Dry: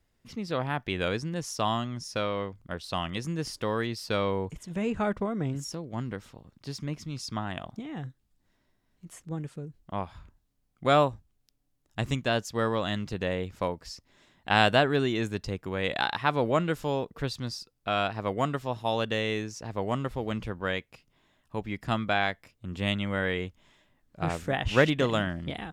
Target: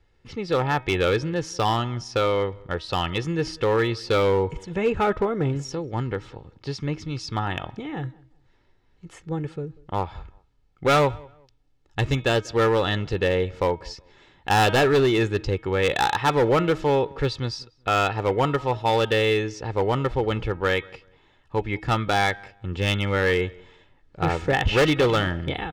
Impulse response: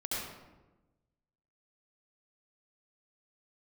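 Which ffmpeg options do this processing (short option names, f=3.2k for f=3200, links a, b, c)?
-filter_complex "[0:a]lowpass=4.2k,aecho=1:1:2.3:0.54,bandreject=f=316.3:t=h:w=4,bandreject=f=632.6:t=h:w=4,bandreject=f=948.9:t=h:w=4,bandreject=f=1.2652k:t=h:w=4,bandreject=f=1.5815k:t=h:w=4,bandreject=f=1.8978k:t=h:w=4,bandreject=f=2.2141k:t=h:w=4,bandreject=f=2.5304k:t=h:w=4,bandreject=f=2.8467k:t=h:w=4,bandreject=f=3.163k:t=h:w=4,bandreject=f=3.4793k:t=h:w=4,bandreject=f=3.7956k:t=h:w=4,volume=22dB,asoftclip=hard,volume=-22dB,asplit=2[a][b];[b]adelay=190,lowpass=f=2k:p=1,volume=-24dB,asplit=2[c][d];[d]adelay=190,lowpass=f=2k:p=1,volume=0.26[e];[a][c][e]amix=inputs=3:normalize=0,volume=7.5dB"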